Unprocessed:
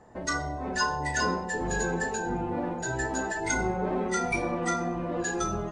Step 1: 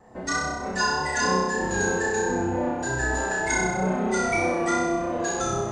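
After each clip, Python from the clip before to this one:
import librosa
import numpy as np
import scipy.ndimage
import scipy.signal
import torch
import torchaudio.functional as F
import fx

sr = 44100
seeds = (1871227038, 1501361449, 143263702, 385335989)

y = fx.vibrato(x, sr, rate_hz=3.2, depth_cents=41.0)
y = fx.room_flutter(y, sr, wall_m=5.5, rt60_s=1.0)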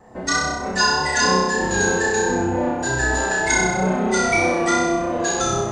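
y = fx.dynamic_eq(x, sr, hz=4000.0, q=1.0, threshold_db=-42.0, ratio=4.0, max_db=6)
y = y * 10.0 ** (4.5 / 20.0)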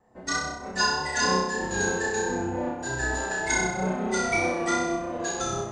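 y = fx.upward_expand(x, sr, threshold_db=-36.0, expansion=1.5)
y = y * 10.0 ** (-5.5 / 20.0)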